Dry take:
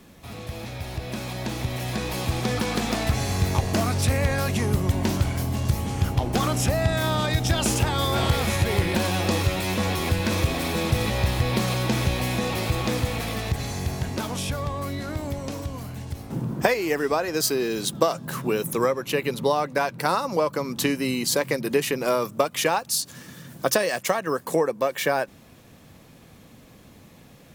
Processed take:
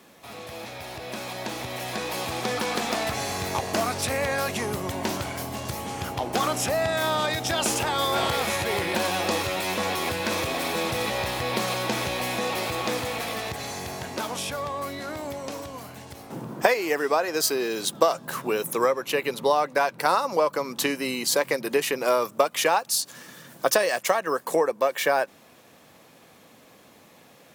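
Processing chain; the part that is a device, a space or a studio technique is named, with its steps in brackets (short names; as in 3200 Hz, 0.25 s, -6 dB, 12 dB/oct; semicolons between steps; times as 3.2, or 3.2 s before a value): filter by subtraction (in parallel: LPF 690 Hz 12 dB/oct + phase invert)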